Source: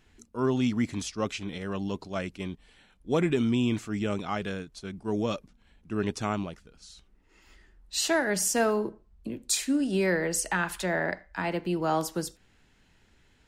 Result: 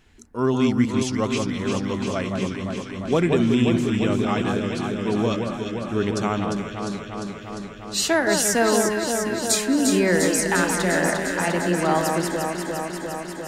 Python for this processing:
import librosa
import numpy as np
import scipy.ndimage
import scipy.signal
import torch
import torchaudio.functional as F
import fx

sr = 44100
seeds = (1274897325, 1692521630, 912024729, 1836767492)

y = fx.echo_alternate(x, sr, ms=175, hz=1500.0, feedback_pct=87, wet_db=-4)
y = y * librosa.db_to_amplitude(5.0)